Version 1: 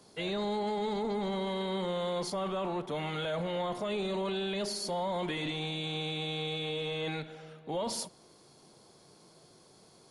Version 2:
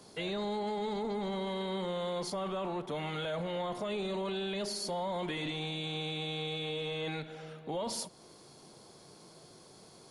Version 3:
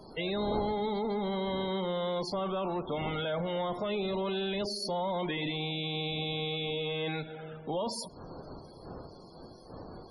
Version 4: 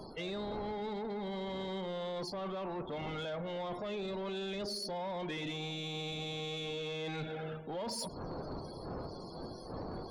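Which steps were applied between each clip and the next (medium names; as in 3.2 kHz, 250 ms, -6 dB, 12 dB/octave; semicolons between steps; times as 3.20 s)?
compression 1.5:1, threshold -46 dBFS, peak gain reduction 6 dB; trim +3.5 dB
wind noise 570 Hz -51 dBFS; loudest bins only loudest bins 64; trim +3 dB
reverse; compression 6:1, threshold -40 dBFS, peak gain reduction 12.5 dB; reverse; saturation -38.5 dBFS, distortion -16 dB; trim +5.5 dB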